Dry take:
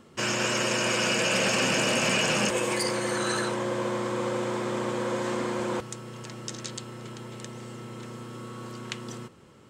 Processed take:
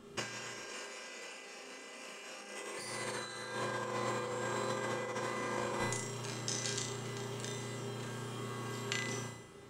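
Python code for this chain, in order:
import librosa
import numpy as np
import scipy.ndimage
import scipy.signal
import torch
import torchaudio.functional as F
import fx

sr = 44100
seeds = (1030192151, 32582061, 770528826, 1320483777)

y = fx.highpass(x, sr, hz=230.0, slope=24, at=(0.54, 2.79))
y = fx.comb_fb(y, sr, f0_hz=400.0, decay_s=0.64, harmonics='all', damping=0.0, mix_pct=90)
y = fx.room_flutter(y, sr, wall_m=5.9, rt60_s=0.66)
y = fx.over_compress(y, sr, threshold_db=-48.0, ratio=-0.5)
y = y * 10.0 ** (9.5 / 20.0)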